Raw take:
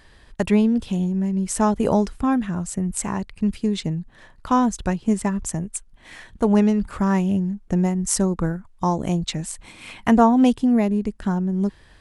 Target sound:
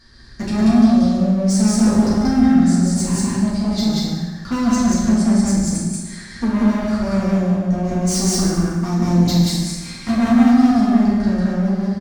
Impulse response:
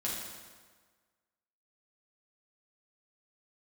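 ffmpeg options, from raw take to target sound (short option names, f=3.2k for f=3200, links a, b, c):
-filter_complex "[0:a]firequalizer=gain_entry='entry(290,0);entry(680,-13);entry(1400,0);entry(2900,-12);entry(4600,10);entry(7900,-5);entry(12000,-8)':delay=0.05:min_phase=1,volume=23dB,asoftclip=hard,volume=-23dB,aecho=1:1:148.7|183.7:0.355|1[a];[1:a]atrim=start_sample=2205,asetrate=48510,aresample=44100[b];[a][b]afir=irnorm=-1:irlink=0,volume=2.5dB"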